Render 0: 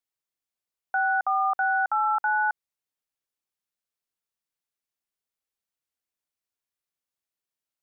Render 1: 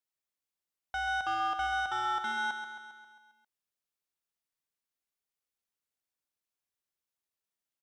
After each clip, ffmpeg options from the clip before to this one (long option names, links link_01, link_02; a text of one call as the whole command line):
ffmpeg -i in.wav -filter_complex "[0:a]asoftclip=type=tanh:threshold=-27.5dB,asplit=2[link_01][link_02];[link_02]aecho=0:1:134|268|402|536|670|804|938:0.376|0.218|0.126|0.0733|0.0425|0.0247|0.0143[link_03];[link_01][link_03]amix=inputs=2:normalize=0,volume=-3dB" out.wav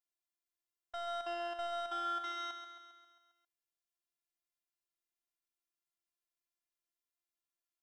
ffmpeg -i in.wav -af "afftfilt=real='hypot(re,im)*cos(PI*b)':imag='0':win_size=512:overlap=0.75,volume=-2dB" out.wav